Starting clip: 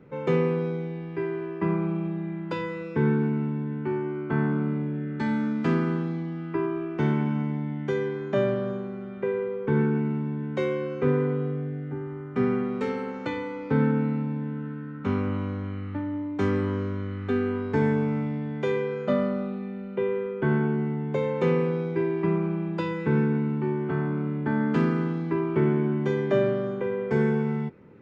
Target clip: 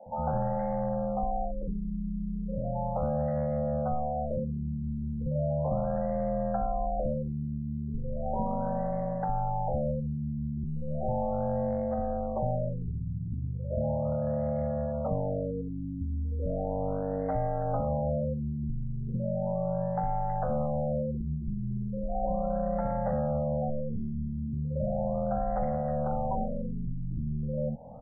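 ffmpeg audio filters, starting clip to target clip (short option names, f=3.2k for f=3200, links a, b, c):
-filter_complex "[0:a]highpass=86,tiltshelf=f=970:g=8,acompressor=threshold=-25dB:ratio=8,aeval=exprs='val(0)*sin(2*PI*370*n/s)':c=same,asoftclip=type=hard:threshold=-23.5dB,acrossover=split=330|1900[a][b][c];[a]adelay=60[d];[c]adelay=320[e];[d][b][e]amix=inputs=3:normalize=0,afftfilt=real='re*lt(b*sr/1024,360*pow(2200/360,0.5+0.5*sin(2*PI*0.36*pts/sr)))':imag='im*lt(b*sr/1024,360*pow(2200/360,0.5+0.5*sin(2*PI*0.36*pts/sr)))':win_size=1024:overlap=0.75,volume=3dB"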